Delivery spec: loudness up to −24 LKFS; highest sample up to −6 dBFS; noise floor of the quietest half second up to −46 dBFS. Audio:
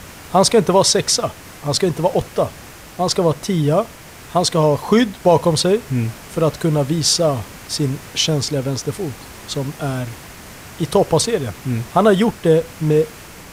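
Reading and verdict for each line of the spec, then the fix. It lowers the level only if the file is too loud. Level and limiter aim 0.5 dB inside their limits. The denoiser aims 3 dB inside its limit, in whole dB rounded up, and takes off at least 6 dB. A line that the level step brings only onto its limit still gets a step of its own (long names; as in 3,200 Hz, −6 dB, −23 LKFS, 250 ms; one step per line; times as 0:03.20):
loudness −18.0 LKFS: out of spec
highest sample −2.0 dBFS: out of spec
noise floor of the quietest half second −38 dBFS: out of spec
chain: broadband denoise 6 dB, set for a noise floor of −38 dBFS
level −6.5 dB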